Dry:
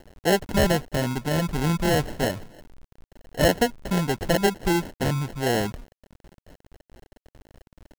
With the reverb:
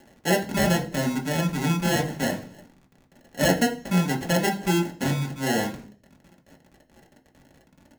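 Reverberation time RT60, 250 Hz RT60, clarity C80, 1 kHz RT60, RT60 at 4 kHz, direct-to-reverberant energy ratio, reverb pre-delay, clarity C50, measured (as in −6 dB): 0.45 s, 0.60 s, 17.5 dB, 0.40 s, 0.50 s, 0.0 dB, 3 ms, 13.5 dB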